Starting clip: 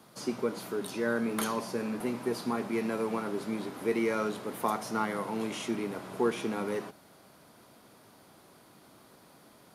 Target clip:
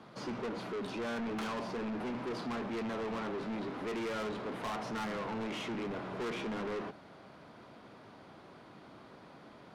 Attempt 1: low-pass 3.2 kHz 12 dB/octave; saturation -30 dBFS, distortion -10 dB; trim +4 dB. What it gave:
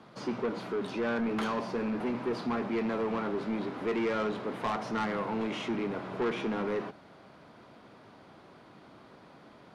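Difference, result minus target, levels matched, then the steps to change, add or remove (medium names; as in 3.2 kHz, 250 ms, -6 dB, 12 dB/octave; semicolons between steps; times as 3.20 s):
saturation: distortion -5 dB
change: saturation -39 dBFS, distortion -4 dB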